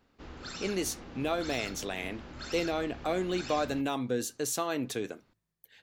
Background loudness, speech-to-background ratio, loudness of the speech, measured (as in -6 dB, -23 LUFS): -43.5 LUFS, 10.5 dB, -33.0 LUFS